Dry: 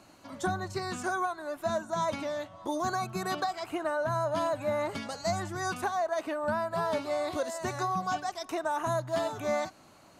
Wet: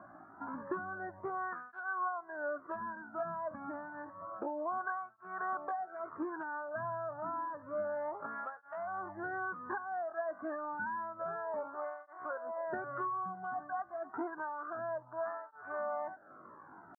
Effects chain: steep low-pass 1600 Hz 72 dB/oct; tilt shelf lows -9 dB; compressor 8:1, threshold -42 dBFS, peak gain reduction 15 dB; tempo 0.6×; tape flanging out of phase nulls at 0.29 Hz, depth 2.3 ms; gain +9 dB

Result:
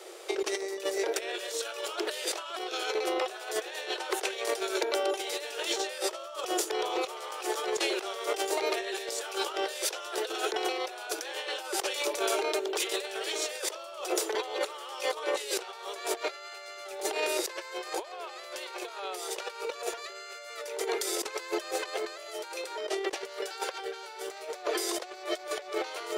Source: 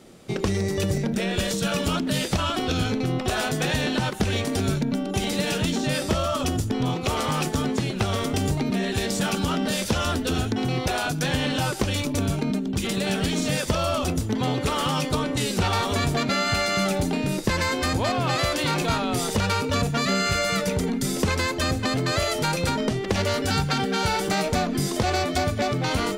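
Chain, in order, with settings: steep high-pass 350 Hz 96 dB/oct; negative-ratio compressor -33 dBFS, ratio -0.5

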